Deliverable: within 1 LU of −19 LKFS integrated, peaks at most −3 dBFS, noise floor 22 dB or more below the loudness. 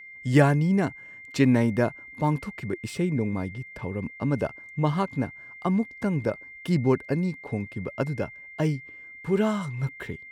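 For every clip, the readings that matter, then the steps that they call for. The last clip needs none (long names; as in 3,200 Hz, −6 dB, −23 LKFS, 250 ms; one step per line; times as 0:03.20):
interfering tone 2,100 Hz; level of the tone −42 dBFS; integrated loudness −27.0 LKFS; sample peak −6.0 dBFS; target loudness −19.0 LKFS
→ notch filter 2,100 Hz, Q 30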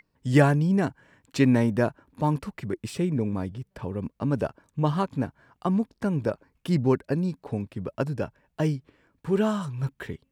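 interfering tone none found; integrated loudness −27.0 LKFS; sample peak −6.0 dBFS; target loudness −19.0 LKFS
→ level +8 dB
brickwall limiter −3 dBFS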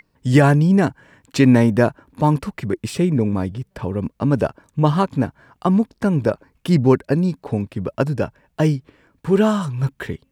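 integrated loudness −19.5 LKFS; sample peak −3.0 dBFS; background noise floor −67 dBFS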